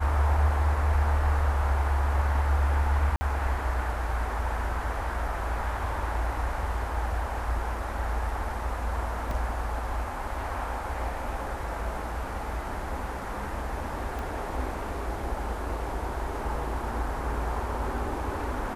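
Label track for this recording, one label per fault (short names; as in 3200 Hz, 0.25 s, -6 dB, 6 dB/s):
3.160000	3.210000	gap 50 ms
9.310000	9.310000	gap 2.3 ms
14.190000	14.190000	pop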